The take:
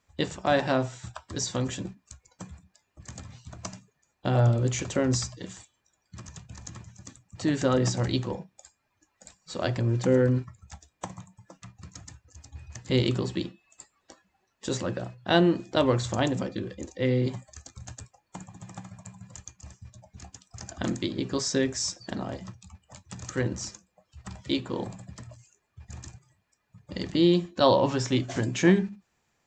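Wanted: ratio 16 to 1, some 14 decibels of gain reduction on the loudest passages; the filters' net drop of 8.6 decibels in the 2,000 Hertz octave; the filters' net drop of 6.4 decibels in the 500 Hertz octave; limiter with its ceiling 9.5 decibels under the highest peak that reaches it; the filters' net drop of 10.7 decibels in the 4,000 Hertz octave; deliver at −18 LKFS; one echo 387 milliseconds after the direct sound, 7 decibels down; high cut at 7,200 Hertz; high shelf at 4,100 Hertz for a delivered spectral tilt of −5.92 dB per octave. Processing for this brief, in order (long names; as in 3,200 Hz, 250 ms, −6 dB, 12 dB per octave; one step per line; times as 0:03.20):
low-pass filter 7,200 Hz
parametric band 500 Hz −8 dB
parametric band 2,000 Hz −8.5 dB
parametric band 4,000 Hz −8.5 dB
high-shelf EQ 4,100 Hz −3.5 dB
downward compressor 16 to 1, threshold −32 dBFS
brickwall limiter −31 dBFS
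single-tap delay 387 ms −7 dB
level +24.5 dB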